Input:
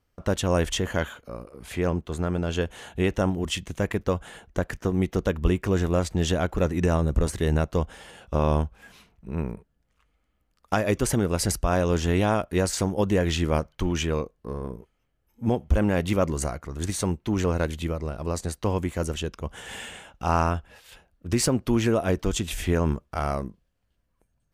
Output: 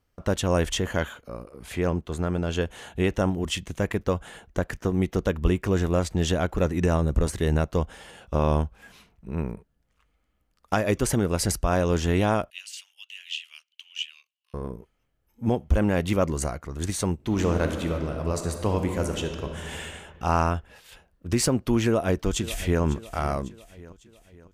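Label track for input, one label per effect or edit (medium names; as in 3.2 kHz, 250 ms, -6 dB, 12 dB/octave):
12.500000	14.540000	ladder high-pass 2.7 kHz, resonance 80%
17.140000	19.730000	reverb throw, RT60 2.2 s, DRR 4.5 dB
21.850000	22.820000	echo throw 550 ms, feedback 50%, level -16 dB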